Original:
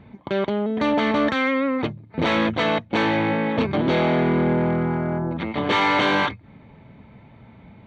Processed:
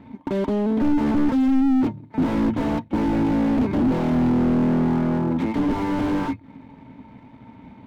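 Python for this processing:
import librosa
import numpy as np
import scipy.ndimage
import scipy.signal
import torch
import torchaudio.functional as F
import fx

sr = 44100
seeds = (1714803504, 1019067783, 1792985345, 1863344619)

y = fx.hum_notches(x, sr, base_hz=50, count=3)
y = fx.leveller(y, sr, passes=1)
y = fx.small_body(y, sr, hz=(270.0, 910.0), ring_ms=75, db=14)
y = fx.slew_limit(y, sr, full_power_hz=55.0)
y = y * librosa.db_to_amplitude(-3.0)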